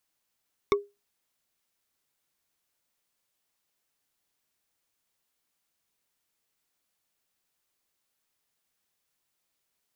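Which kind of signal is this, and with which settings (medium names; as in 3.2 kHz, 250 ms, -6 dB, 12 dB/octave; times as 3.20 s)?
wood hit bar, lowest mode 406 Hz, decay 0.23 s, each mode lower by 3 dB, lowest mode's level -16 dB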